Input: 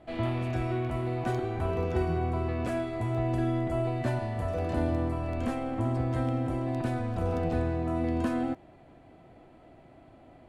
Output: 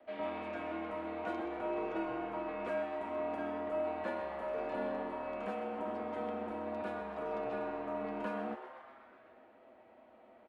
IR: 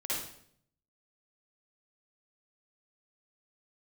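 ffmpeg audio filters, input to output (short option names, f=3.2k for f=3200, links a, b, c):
-filter_complex "[0:a]highpass=40,aecho=1:1:7.3:0.48,afreqshift=-42,acrossover=split=120|780|2600[a][b][c][d];[a]aeval=exprs='0.0224*(abs(mod(val(0)/0.0224+3,4)-2)-1)':c=same[e];[e][b][c][d]amix=inputs=4:normalize=0,acrossover=split=290 3300:gain=0.0708 1 0.141[f][g][h];[f][g][h]amix=inputs=3:normalize=0,asplit=9[i][j][k][l][m][n][o][p][q];[j]adelay=127,afreqshift=150,volume=-11.5dB[r];[k]adelay=254,afreqshift=300,volume=-15.4dB[s];[l]adelay=381,afreqshift=450,volume=-19.3dB[t];[m]adelay=508,afreqshift=600,volume=-23.1dB[u];[n]adelay=635,afreqshift=750,volume=-27dB[v];[o]adelay=762,afreqshift=900,volume=-30.9dB[w];[p]adelay=889,afreqshift=1050,volume=-34.8dB[x];[q]adelay=1016,afreqshift=1200,volume=-38.6dB[y];[i][r][s][t][u][v][w][x][y]amix=inputs=9:normalize=0,volume=-4dB"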